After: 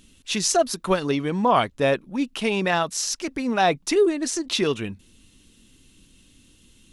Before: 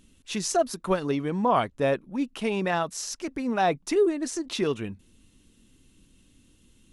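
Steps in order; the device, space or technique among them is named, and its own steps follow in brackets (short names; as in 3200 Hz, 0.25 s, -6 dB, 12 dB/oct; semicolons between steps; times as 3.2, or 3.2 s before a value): presence and air boost (bell 3800 Hz +5.5 dB 2 oct; high shelf 9600 Hz +4 dB); gain +3 dB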